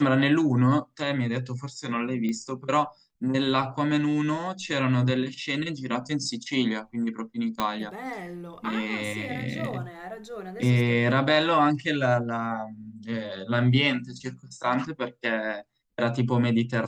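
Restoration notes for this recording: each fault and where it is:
2.29 pop -20 dBFS
7.6 pop -11 dBFS

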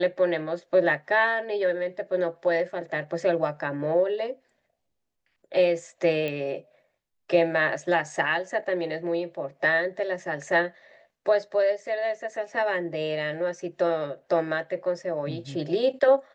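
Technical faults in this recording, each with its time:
6.28 pop -19 dBFS

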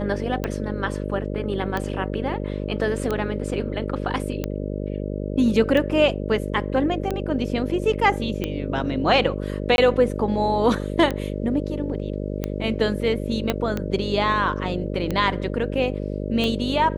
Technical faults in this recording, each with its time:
buzz 50 Hz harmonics 12 -28 dBFS
tick 45 rpm -12 dBFS
9.76–9.78 gap 21 ms
13.5 pop -7 dBFS

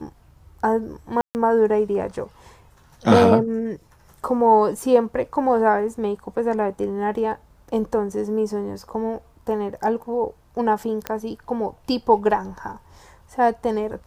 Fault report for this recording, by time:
1.21–1.35 gap 0.139 s
11.07 pop -10 dBFS

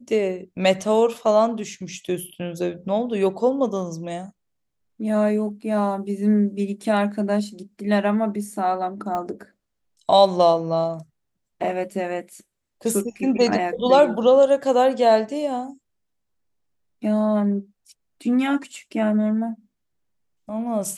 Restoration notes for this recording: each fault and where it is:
9.15 pop -16 dBFS

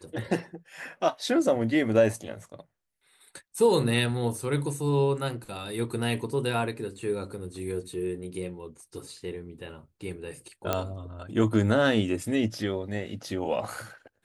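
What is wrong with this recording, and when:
10.73 pop -11 dBFS

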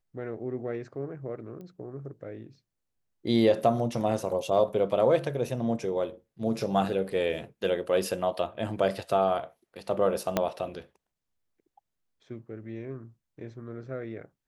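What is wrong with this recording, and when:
1.61 pop -33 dBFS
10.37 pop -10 dBFS

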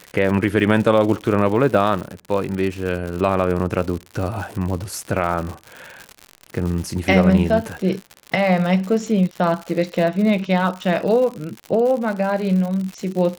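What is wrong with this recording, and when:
crackle 120/s -26 dBFS

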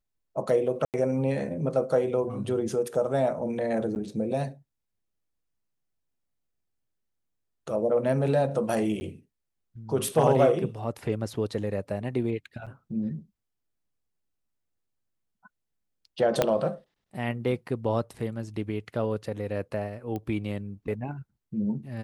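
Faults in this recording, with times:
0.85–0.94 gap 88 ms
3.95–3.96 gap 9.4 ms
9–9.01 gap 10 ms
12.66–12.67 gap 6.6 ms
16.42 pop -8 dBFS
20.16 pop -22 dBFS

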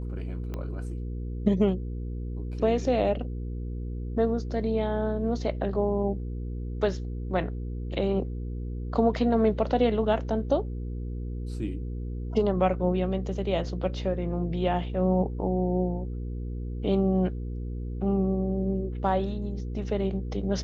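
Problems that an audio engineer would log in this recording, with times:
hum 60 Hz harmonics 8 -33 dBFS
0.54 pop -22 dBFS

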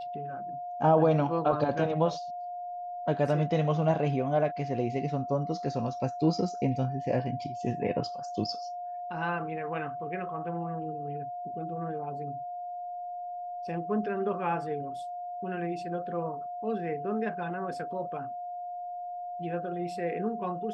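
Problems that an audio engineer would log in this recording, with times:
tone 710 Hz -35 dBFS

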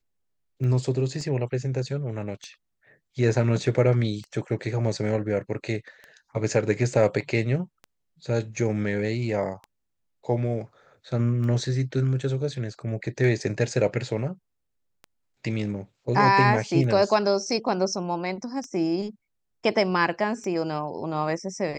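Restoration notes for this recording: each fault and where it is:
tick 33 1/3 rpm -26 dBFS
1.21 gap 2.3 ms

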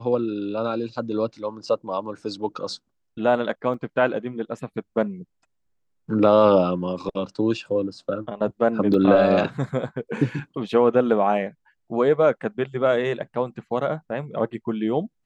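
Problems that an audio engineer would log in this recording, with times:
3.74 gap 4.6 ms
8.94 gap 2.4 ms

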